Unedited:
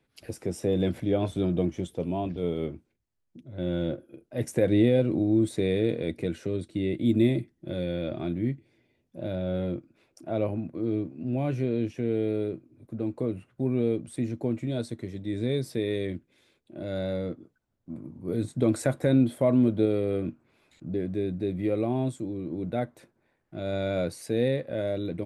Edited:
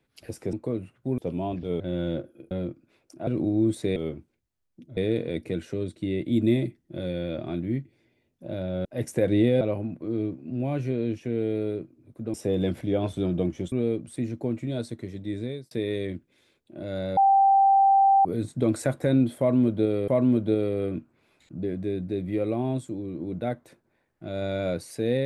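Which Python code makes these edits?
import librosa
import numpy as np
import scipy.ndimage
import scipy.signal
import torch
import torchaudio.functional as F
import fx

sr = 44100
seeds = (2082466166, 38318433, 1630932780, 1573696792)

y = fx.edit(x, sr, fx.swap(start_s=0.53, length_s=1.38, other_s=13.07, other_length_s=0.65),
    fx.move(start_s=2.53, length_s=1.01, to_s=5.7),
    fx.swap(start_s=4.25, length_s=0.76, other_s=9.58, other_length_s=0.76),
    fx.fade_out_span(start_s=15.31, length_s=0.4),
    fx.bleep(start_s=17.17, length_s=1.08, hz=784.0, db=-15.0),
    fx.repeat(start_s=19.39, length_s=0.69, count=2), tone=tone)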